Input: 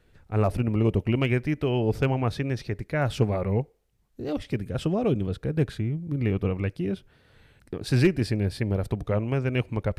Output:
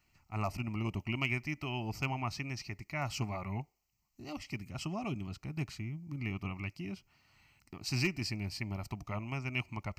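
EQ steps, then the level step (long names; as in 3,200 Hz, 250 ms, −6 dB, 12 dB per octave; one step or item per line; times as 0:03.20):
spectral tilt +2.5 dB per octave
phaser with its sweep stopped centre 2,400 Hz, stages 8
−4.0 dB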